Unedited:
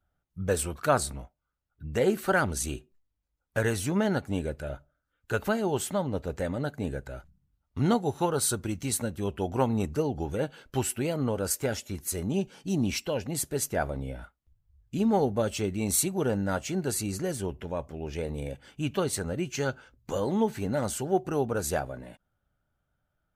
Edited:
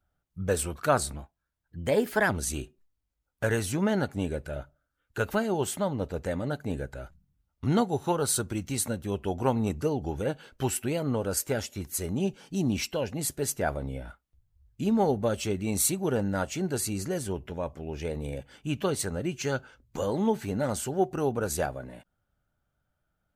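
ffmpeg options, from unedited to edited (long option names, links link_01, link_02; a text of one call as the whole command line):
ffmpeg -i in.wav -filter_complex "[0:a]asplit=3[link_01][link_02][link_03];[link_01]atrim=end=1.164[link_04];[link_02]atrim=start=1.16:end=2.43,asetpts=PTS-STARTPTS,asetrate=49392,aresample=44100,atrim=end_sample=50006,asetpts=PTS-STARTPTS[link_05];[link_03]atrim=start=2.426[link_06];[link_04][link_05]acrossfade=duration=0.004:curve1=hsin:curve2=hsin[link_07];[link_07][link_06]acrossfade=duration=0.004:curve1=hsin:curve2=hsin" out.wav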